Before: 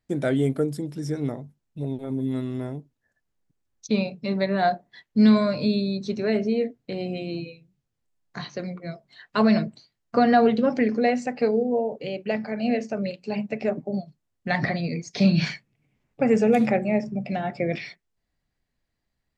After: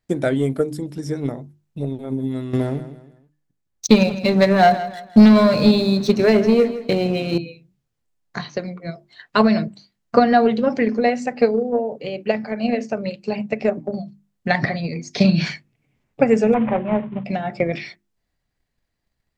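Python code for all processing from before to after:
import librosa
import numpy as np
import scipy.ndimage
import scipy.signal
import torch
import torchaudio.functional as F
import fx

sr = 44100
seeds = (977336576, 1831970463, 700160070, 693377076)

y = fx.chain(x, sr, fx.leveller(passes=2),
    fx.echo_feedback(ms=162, feedback_pct=34, wet_db=-14.0), at=(2.53, 7.38))
y = fx.chain(y, sr, fx.cvsd(bps=16000),
    fx.lowpass(hz=1700.0, slope=6),
    fx.peak_eq(hz=1000.0, db=9.5, octaves=0.29), at=(16.54, 17.24))
y = fx.hum_notches(y, sr, base_hz=50, count=7)
y = fx.transient(y, sr, attack_db=7, sustain_db=2)
y = y * librosa.db_to_amplitude(1.5)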